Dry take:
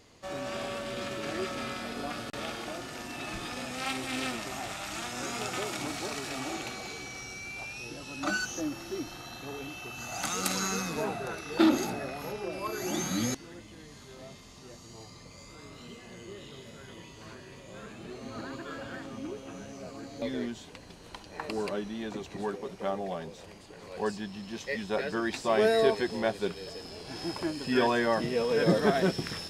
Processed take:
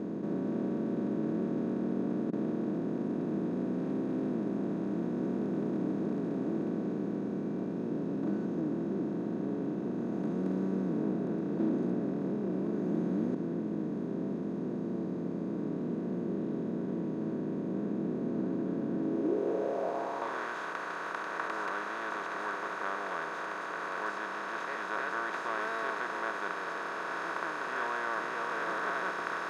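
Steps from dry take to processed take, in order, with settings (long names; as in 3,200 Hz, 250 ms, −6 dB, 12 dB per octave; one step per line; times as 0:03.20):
compressor on every frequency bin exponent 0.2
band-pass filter sweep 230 Hz → 1,300 Hz, 0:18.95–0:20.46
level −6.5 dB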